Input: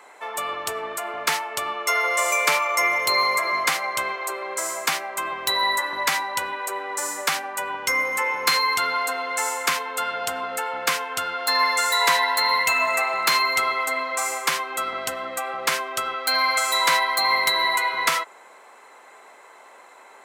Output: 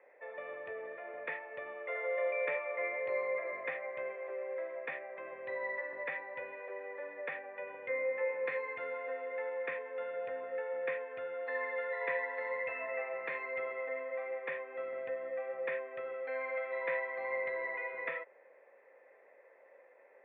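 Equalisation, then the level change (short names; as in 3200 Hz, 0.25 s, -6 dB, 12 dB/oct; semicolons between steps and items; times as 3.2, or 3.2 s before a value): vocal tract filter e; air absorption 130 m; 0.0 dB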